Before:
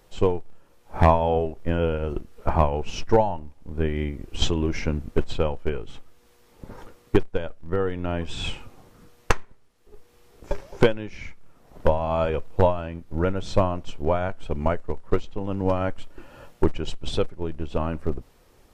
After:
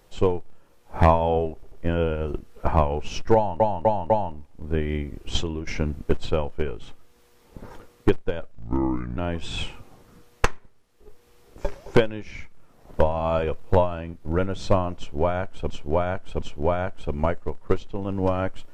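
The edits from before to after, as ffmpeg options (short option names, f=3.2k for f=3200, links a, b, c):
-filter_complex "[0:a]asplit=11[a][b][c][d][e][f][g][h][i][j][k];[a]atrim=end=1.632[l];[b]atrim=start=1.538:end=1.632[m];[c]atrim=start=1.538:end=3.422[n];[d]atrim=start=3.168:end=3.422[o];[e]atrim=start=3.168:end=3.422[p];[f]atrim=start=3.168:end=4.74,asetpts=PTS-STARTPTS,afade=t=out:st=1.102:d=0.47:silence=0.316228[q];[g]atrim=start=4.74:end=7.594,asetpts=PTS-STARTPTS,afade=t=in:d=0.004:c=hsin:silence=0.316228[r];[h]atrim=start=7.59:end=8.03,asetpts=PTS-STARTPTS,asetrate=29988,aresample=44100,atrim=end_sample=28535,asetpts=PTS-STARTPTS[s];[i]atrim=start=8.026:end=14.562[t];[j]atrim=start=13.838:end=14.562[u];[k]atrim=start=13.838[v];[l][m]acrossfade=d=0.004:c1=hsin:c2=hsin[w];[w][n]acrossfade=d=0.004:c1=hsin:c2=hsin[x];[x][o]acrossfade=d=0.004:c1=hsin:c2=hsin[y];[y][p]acrossfade=d=0.004:c1=hsin:c2=hsin[z];[q][r]concat=n=2:v=0:a=1[aa];[z][aa]acrossfade=d=0.004:c1=hsin:c2=hsin[ab];[ab][s]acrossfade=d=0.004:c1=hsin:c2=hsin[ac];[ac][t]acrossfade=d=0.004:c1=hsin:c2=hsin[ad];[ad][u]acrossfade=d=0.004:c1=hsin:c2=hsin[ae];[ae][v]acrossfade=d=0.004:c1=hsin:c2=hsin"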